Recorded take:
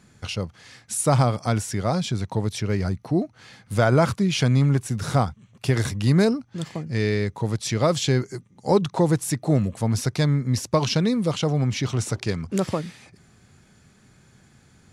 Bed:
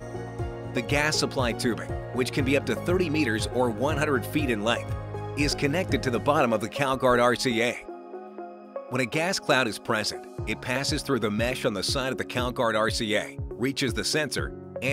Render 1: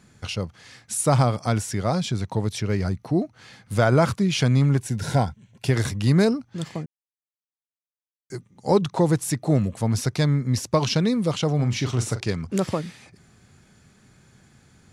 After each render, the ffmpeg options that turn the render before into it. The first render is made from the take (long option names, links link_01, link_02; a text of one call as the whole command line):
ffmpeg -i in.wav -filter_complex "[0:a]asettb=1/sr,asplit=3[link_01][link_02][link_03];[link_01]atrim=end=4.804[link_04];[link_02]atrim=start=4.8:end=5.67,asetpts=PTS-STARTPTS,afade=type=in:duration=0.004:curve=qsin,afade=type=out:start_time=0.866:duration=0.004:curve=qsin,asuperstop=centerf=1200:order=12:qfactor=5.1[link_05];[link_03]atrim=start=5.666[link_06];[link_04][link_05]acrossfade=duration=0.004:curve1=hsin:curve2=qsin[link_07];[link_07][link_06]acrossfade=duration=0.004:curve1=qsin:curve2=hsin,asettb=1/sr,asplit=3[link_08][link_09][link_10];[link_08]atrim=end=11.554[link_11];[link_09]atrim=start=11.55:end=12.21,asetpts=PTS-STARTPTS,afade=type=in:duration=0.004:curve=qsin,afade=type=out:start_time=0.656:duration=0.004:curve=qsin,asplit=2[link_12][link_13];[link_13]adelay=41,volume=-11dB[link_14];[link_12][link_14]amix=inputs=2:normalize=0,atrim=end_sample=29106[link_15];[link_10]atrim=start=12.206[link_16];[link_11][link_15]acrossfade=duration=0.004:curve1=hsin:curve2=qsin[link_17];[link_17][link_16]acrossfade=duration=0.004:curve1=qsin:curve2=hsin,asplit=3[link_18][link_19][link_20];[link_18]atrim=end=6.86,asetpts=PTS-STARTPTS,afade=type=out:start_time=6.856:duration=0.004:curve=hsin[link_21];[link_19]atrim=start=6.86:end=8.3,asetpts=PTS-STARTPTS,volume=0[link_22];[link_20]atrim=start=8.3,asetpts=PTS-STARTPTS,afade=type=in:duration=0.004:curve=hsin[link_23];[link_21][link_22][link_23]concat=n=3:v=0:a=1" out.wav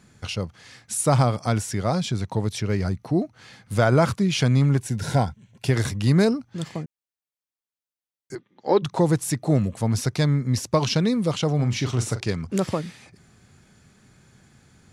ffmpeg -i in.wav -filter_complex "[0:a]asplit=3[link_01][link_02][link_03];[link_01]afade=type=out:start_time=8.34:duration=0.02[link_04];[link_02]highpass=320,equalizer=frequency=330:width_type=q:width=4:gain=6,equalizer=frequency=1700:width_type=q:width=4:gain=6,equalizer=frequency=3400:width_type=q:width=4:gain=6,lowpass=frequency=4200:width=0.5412,lowpass=frequency=4200:width=1.3066,afade=type=in:start_time=8.34:duration=0.02,afade=type=out:start_time=8.82:duration=0.02[link_05];[link_03]afade=type=in:start_time=8.82:duration=0.02[link_06];[link_04][link_05][link_06]amix=inputs=3:normalize=0" out.wav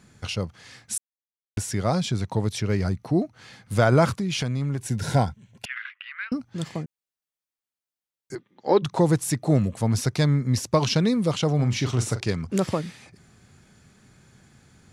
ffmpeg -i in.wav -filter_complex "[0:a]asettb=1/sr,asplit=3[link_01][link_02][link_03];[link_01]atrim=end=4.094[link_04];[link_02]atrim=start=4.09:end=4.85,asetpts=PTS-STARTPTS,afade=type=in:duration=0.004:curve=qsin,afade=type=out:start_time=0.756:duration=0.004:curve=qsin,acompressor=threshold=-23dB:ratio=6:attack=3.2:release=140:knee=1:detection=peak[link_05];[link_03]atrim=start=4.846[link_06];[link_04][link_05]acrossfade=duration=0.004:curve1=hsin:curve2=qsin[link_07];[link_07][link_06]acrossfade=duration=0.004:curve1=qsin:curve2=hsin,asettb=1/sr,asplit=3[link_08][link_09][link_10];[link_08]atrim=end=5.654[link_11];[link_09]atrim=start=5.65:end=6.32,asetpts=PTS-STARTPTS,afade=type=in:duration=0.004:curve=qsin,afade=type=out:start_time=0.666:duration=0.004:curve=qsin,asuperpass=centerf=2000:order=8:qfactor=1.2[link_12];[link_10]atrim=start=6.316[link_13];[link_11][link_12]acrossfade=duration=0.004:curve1=hsin:curve2=qsin[link_14];[link_14][link_13]acrossfade=duration=0.004:curve1=qsin:curve2=hsin,asplit=3[link_15][link_16][link_17];[link_15]atrim=end=0.98,asetpts=PTS-STARTPTS,afade=type=out:start_time=0.976:duration=0.004:curve=hsin[link_18];[link_16]atrim=start=0.98:end=1.57,asetpts=PTS-STARTPTS,volume=0[link_19];[link_17]atrim=start=1.57,asetpts=PTS-STARTPTS,afade=type=in:duration=0.004:curve=hsin[link_20];[link_18][link_19][link_20]concat=n=3:v=0:a=1" out.wav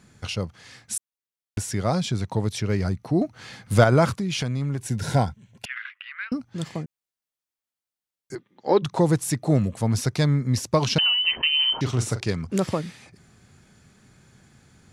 ffmpeg -i in.wav -filter_complex "[0:a]asettb=1/sr,asplit=3[link_01][link_02][link_03];[link_01]atrim=end=3.214[link_04];[link_02]atrim=start=3.21:end=3.84,asetpts=PTS-STARTPTS,afade=type=in:duration=0.004:curve=qsin,afade=type=out:start_time=0.626:duration=0.004:curve=qsin,acontrast=30[link_05];[link_03]atrim=start=3.836[link_06];[link_04][link_05]acrossfade=duration=0.004:curve1=hsin:curve2=qsin[link_07];[link_07][link_06]acrossfade=duration=0.004:curve1=qsin:curve2=hsin,asettb=1/sr,asplit=3[link_08][link_09][link_10];[link_08]atrim=end=10.984[link_11];[link_09]atrim=start=10.98:end=11.81,asetpts=PTS-STARTPTS,afade=type=in:duration=0.004:curve=qsin,afade=type=out:start_time=0.826:duration=0.004:curve=qsin,lowpass=frequency=2700:width_type=q:width=0.5098,lowpass=frequency=2700:width_type=q:width=0.6013,lowpass=frequency=2700:width_type=q:width=0.9,lowpass=frequency=2700:width_type=q:width=2.563,afreqshift=-3200[link_12];[link_10]atrim=start=11.806[link_13];[link_11][link_12]acrossfade=duration=0.004:curve1=hsin:curve2=qsin[link_14];[link_14][link_13]acrossfade=duration=0.004:curve1=qsin:curve2=hsin" out.wav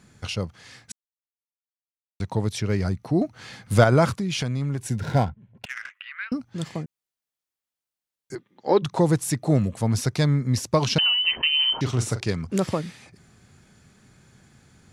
ffmpeg -i in.wav -filter_complex "[0:a]asplit=3[link_01][link_02][link_03];[link_01]afade=type=out:start_time=4.99:duration=0.02[link_04];[link_02]adynamicsmooth=sensitivity=5.5:basefreq=1300,afade=type=in:start_time=4.99:duration=0.02,afade=type=out:start_time=5.93:duration=0.02[link_05];[link_03]afade=type=in:start_time=5.93:duration=0.02[link_06];[link_04][link_05][link_06]amix=inputs=3:normalize=0,asplit=3[link_07][link_08][link_09];[link_07]atrim=end=0.92,asetpts=PTS-STARTPTS,afade=type=out:start_time=0.916:duration=0.004:curve=hsin[link_10];[link_08]atrim=start=0.92:end=2.2,asetpts=PTS-STARTPTS,volume=0[link_11];[link_09]atrim=start=2.2,asetpts=PTS-STARTPTS,afade=type=in:duration=0.004:curve=hsin[link_12];[link_10][link_11][link_12]concat=n=3:v=0:a=1" out.wav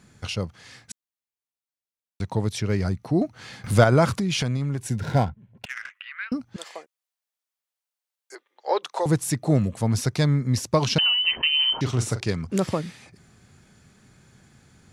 ffmpeg -i in.wav -filter_complex "[0:a]asettb=1/sr,asplit=3[link_01][link_02][link_03];[link_01]atrim=end=3.644[link_04];[link_02]atrim=start=3.64:end=4.57,asetpts=PTS-STARTPTS,afade=type=in:duration=0.004:curve=qsin,afade=type=out:start_time=0.926:duration=0.004:curve=qsin,acompressor=mode=upward:threshold=-19dB:ratio=2.5:attack=3.2:release=140:knee=2.83:detection=peak[link_05];[link_03]atrim=start=4.566[link_06];[link_04][link_05]acrossfade=duration=0.004:curve1=hsin:curve2=qsin[link_07];[link_07][link_06]acrossfade=duration=0.004:curve1=qsin:curve2=hsin,asettb=1/sr,asplit=3[link_08][link_09][link_10];[link_08]atrim=end=6.564[link_11];[link_09]atrim=start=6.56:end=9.06,asetpts=PTS-STARTPTS,afade=type=in:duration=0.004:curve=qsin,afade=type=out:start_time=2.496:duration=0.004:curve=qsin,highpass=frequency=500:width=0.5412,highpass=frequency=500:width=1.3066[link_12];[link_10]atrim=start=9.056[link_13];[link_11][link_12]acrossfade=duration=0.004:curve1=hsin:curve2=qsin[link_14];[link_14][link_13]acrossfade=duration=0.004:curve1=qsin:curve2=hsin" out.wav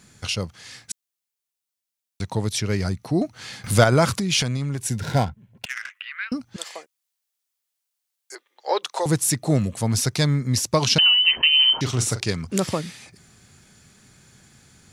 ffmpeg -i in.wav -af "highshelf=frequency=2600:gain=9" out.wav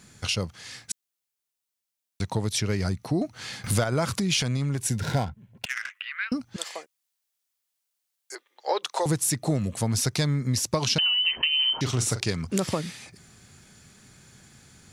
ffmpeg -i in.wav -af "acompressor=threshold=-21dB:ratio=6" out.wav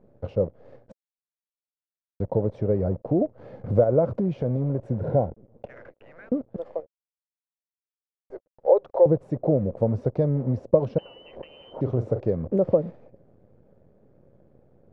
ffmpeg -i in.wav -af "acrusher=bits=7:dc=4:mix=0:aa=0.000001,lowpass=frequency=540:width_type=q:width=4.7" out.wav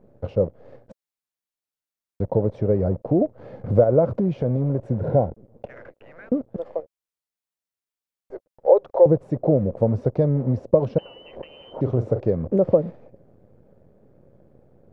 ffmpeg -i in.wav -af "volume=3dB,alimiter=limit=-3dB:level=0:latency=1" out.wav